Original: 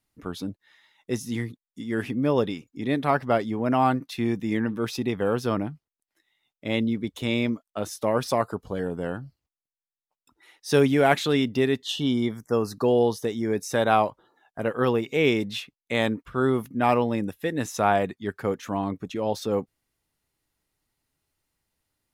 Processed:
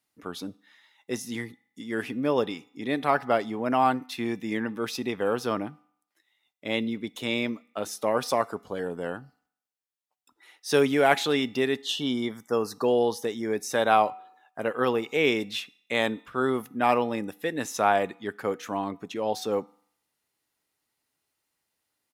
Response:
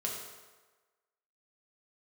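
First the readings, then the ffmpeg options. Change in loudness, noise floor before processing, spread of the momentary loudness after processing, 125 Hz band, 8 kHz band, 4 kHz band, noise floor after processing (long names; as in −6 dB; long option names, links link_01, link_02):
−2.0 dB, below −85 dBFS, 12 LU, −9.5 dB, +0.5 dB, +0.5 dB, −82 dBFS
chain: -filter_complex "[0:a]highpass=frequency=380:poles=1,asplit=2[link_01][link_02];[link_02]aecho=1:1:4:0.65[link_03];[1:a]atrim=start_sample=2205,asetrate=83790,aresample=44100[link_04];[link_03][link_04]afir=irnorm=-1:irlink=0,volume=-16.5dB[link_05];[link_01][link_05]amix=inputs=2:normalize=0"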